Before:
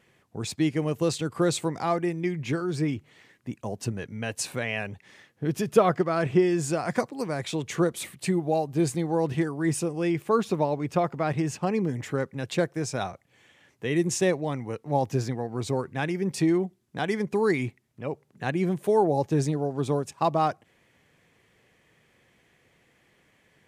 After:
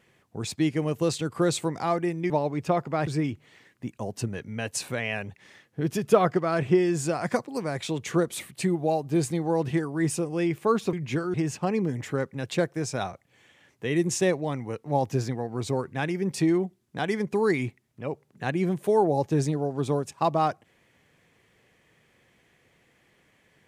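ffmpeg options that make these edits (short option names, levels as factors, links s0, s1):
-filter_complex "[0:a]asplit=5[s0][s1][s2][s3][s4];[s0]atrim=end=2.302[s5];[s1]atrim=start=10.568:end=11.342[s6];[s2]atrim=start=2.708:end=10.572[s7];[s3]atrim=start=2.298:end=2.712[s8];[s4]atrim=start=11.338[s9];[s5][s6]acrossfade=d=0.004:c1=hsin:c2=hsin[s10];[s10][s7]acrossfade=d=0.004:c1=hsin:c2=hsin[s11];[s11][s8]acrossfade=d=0.004:c1=hsin:c2=hsin[s12];[s12][s9]acrossfade=d=0.004:c1=hsin:c2=hsin"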